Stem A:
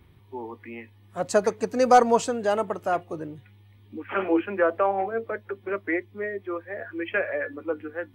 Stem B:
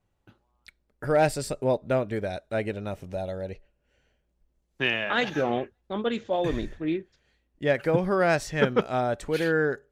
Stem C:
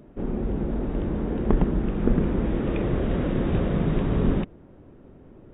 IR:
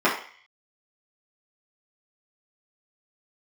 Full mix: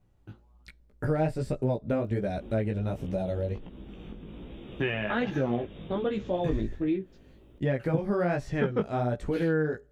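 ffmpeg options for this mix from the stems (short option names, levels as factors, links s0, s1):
-filter_complex "[1:a]lowshelf=f=370:g=12,volume=1.41[s0];[2:a]aexciter=amount=4.2:drive=8.3:freq=2600,adelay=2050,volume=0.501,acompressor=threshold=0.0158:ratio=12,volume=1[s1];[s0][s1]amix=inputs=2:normalize=0,acrossover=split=3000[s2][s3];[s3]acompressor=threshold=0.00708:ratio=4:attack=1:release=60[s4];[s2][s4]amix=inputs=2:normalize=0,flanger=delay=15:depth=4.3:speed=1.3,acompressor=threshold=0.0398:ratio=2.5"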